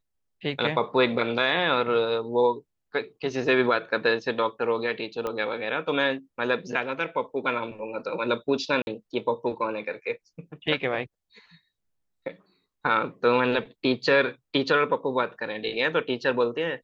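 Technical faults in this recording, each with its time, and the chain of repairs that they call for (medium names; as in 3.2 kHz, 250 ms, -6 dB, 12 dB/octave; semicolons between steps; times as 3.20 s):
5.27 s: pop -17 dBFS
8.82–8.87 s: dropout 51 ms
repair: de-click; interpolate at 8.82 s, 51 ms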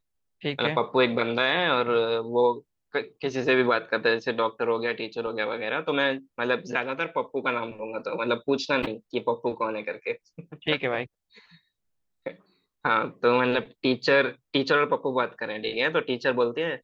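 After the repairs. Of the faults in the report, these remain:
5.27 s: pop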